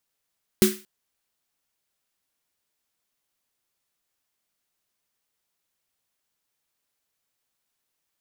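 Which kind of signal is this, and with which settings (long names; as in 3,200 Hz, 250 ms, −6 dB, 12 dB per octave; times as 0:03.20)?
synth snare length 0.23 s, tones 210 Hz, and 370 Hz, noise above 1,300 Hz, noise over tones −6 dB, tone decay 0.27 s, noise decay 0.35 s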